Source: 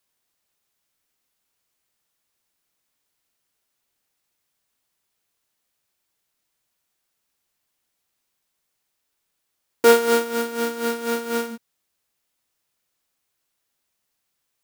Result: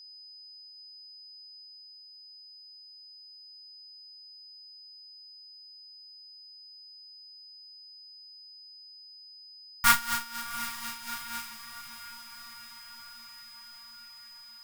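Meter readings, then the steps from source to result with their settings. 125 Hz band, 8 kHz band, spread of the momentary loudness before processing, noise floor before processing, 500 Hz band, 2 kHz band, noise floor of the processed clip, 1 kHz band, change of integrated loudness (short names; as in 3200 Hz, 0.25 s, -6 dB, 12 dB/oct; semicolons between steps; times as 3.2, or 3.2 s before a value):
n/a, -1.5 dB, 11 LU, -77 dBFS, -38.5 dB, -2.5 dB, -51 dBFS, -5.0 dB, -12.5 dB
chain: whine 5000 Hz -39 dBFS; added harmonics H 2 -11 dB, 3 -12 dB, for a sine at -2.5 dBFS; elliptic band-stop 170–1000 Hz, stop band 70 dB; on a send: diffused feedback echo 0.754 s, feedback 66%, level -13.5 dB; on the sum: gain +4.5 dB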